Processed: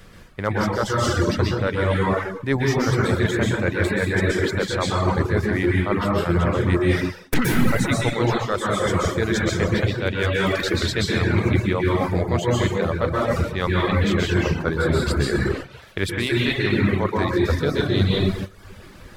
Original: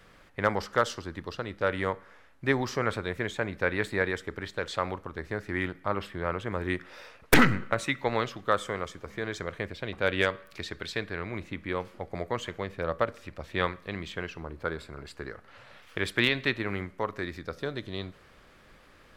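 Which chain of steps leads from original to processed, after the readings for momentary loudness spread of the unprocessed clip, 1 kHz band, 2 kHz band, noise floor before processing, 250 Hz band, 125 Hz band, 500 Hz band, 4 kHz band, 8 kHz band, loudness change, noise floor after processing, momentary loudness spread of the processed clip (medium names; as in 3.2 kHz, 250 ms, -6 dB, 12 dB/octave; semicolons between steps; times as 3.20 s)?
13 LU, +6.5 dB, +5.5 dB, -57 dBFS, +12.0 dB, +16.0 dB, +9.0 dB, +8.0 dB, +9.5 dB, +9.0 dB, -44 dBFS, 3 LU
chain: plate-style reverb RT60 1.4 s, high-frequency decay 0.75×, pre-delay 110 ms, DRR -3.5 dB; gate -41 dBFS, range -8 dB; treble shelf 3.5 kHz +9.5 dB; in parallel at -8 dB: overload inside the chain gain 9.5 dB; on the sum: reverb removal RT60 0.61 s; reverse; compression 16:1, threshold -30 dBFS, peak gain reduction 22.5 dB; reverse; bass shelf 370 Hz +11 dB; trim +8.5 dB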